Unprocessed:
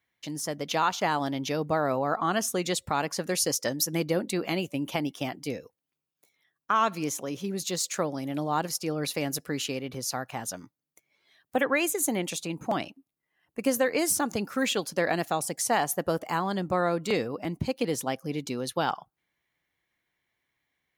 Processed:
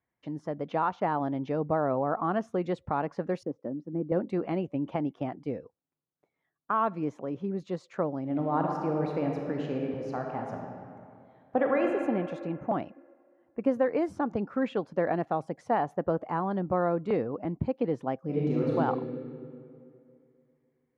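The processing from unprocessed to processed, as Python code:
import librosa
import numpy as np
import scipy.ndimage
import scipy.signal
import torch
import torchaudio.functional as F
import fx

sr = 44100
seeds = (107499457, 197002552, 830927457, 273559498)

y = fx.bandpass_q(x, sr, hz=260.0, q=1.3, at=(3.43, 4.12))
y = fx.reverb_throw(y, sr, start_s=8.21, length_s=3.66, rt60_s=2.4, drr_db=1.0)
y = fx.reverb_throw(y, sr, start_s=18.24, length_s=0.51, rt60_s=2.5, drr_db=-7.0)
y = scipy.signal.sosfilt(scipy.signal.butter(2, 1100.0, 'lowpass', fs=sr, output='sos'), y)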